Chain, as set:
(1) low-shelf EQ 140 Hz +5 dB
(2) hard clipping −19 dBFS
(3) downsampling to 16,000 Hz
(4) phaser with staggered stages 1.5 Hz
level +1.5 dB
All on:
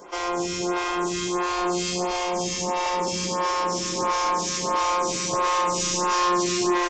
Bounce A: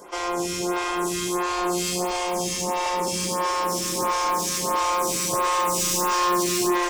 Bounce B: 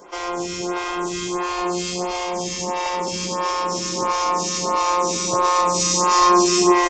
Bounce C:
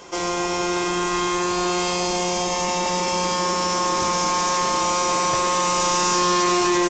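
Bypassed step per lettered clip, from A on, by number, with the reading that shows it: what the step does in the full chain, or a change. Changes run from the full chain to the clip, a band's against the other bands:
3, 8 kHz band +2.0 dB
2, distortion level −6 dB
4, change in crest factor −3.0 dB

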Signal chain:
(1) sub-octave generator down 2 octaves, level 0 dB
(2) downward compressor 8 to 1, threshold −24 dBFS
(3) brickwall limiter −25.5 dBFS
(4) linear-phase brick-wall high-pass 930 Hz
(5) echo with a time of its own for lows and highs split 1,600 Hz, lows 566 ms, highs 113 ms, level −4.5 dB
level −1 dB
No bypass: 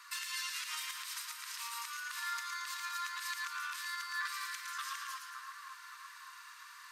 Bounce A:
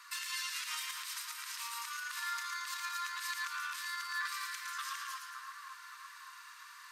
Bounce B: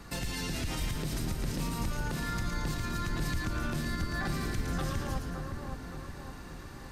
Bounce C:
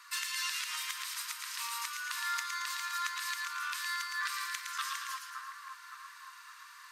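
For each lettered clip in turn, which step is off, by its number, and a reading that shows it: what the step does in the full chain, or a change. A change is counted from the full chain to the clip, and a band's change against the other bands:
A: 2, average gain reduction 4.5 dB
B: 4, 1 kHz band +1.5 dB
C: 3, average gain reduction 2.5 dB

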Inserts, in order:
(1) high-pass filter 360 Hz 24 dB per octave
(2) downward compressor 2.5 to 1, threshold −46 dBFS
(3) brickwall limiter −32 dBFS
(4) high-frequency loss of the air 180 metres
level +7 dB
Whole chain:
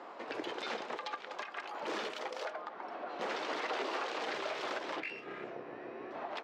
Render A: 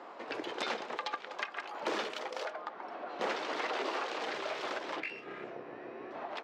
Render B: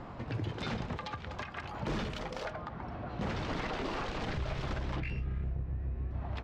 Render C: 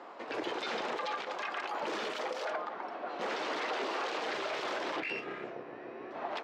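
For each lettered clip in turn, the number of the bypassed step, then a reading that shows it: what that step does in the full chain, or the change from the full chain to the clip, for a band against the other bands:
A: 3, change in crest factor +6.0 dB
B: 1, 125 Hz band +30.5 dB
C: 2, average gain reduction 9.0 dB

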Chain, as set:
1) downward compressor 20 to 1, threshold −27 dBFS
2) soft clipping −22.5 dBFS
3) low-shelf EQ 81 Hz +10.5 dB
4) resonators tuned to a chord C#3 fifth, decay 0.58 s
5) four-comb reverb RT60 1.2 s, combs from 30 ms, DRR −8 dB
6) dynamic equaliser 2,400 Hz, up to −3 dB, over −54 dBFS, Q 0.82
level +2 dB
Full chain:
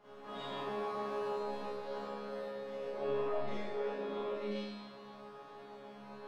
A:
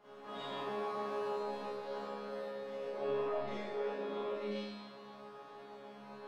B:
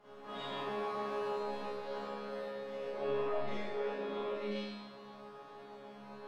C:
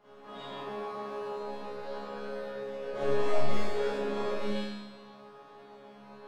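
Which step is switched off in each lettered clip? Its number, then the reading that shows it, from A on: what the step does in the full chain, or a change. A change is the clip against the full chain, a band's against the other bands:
3, 125 Hz band −2.0 dB
6, 2 kHz band +2.0 dB
1, average gain reduction 4.0 dB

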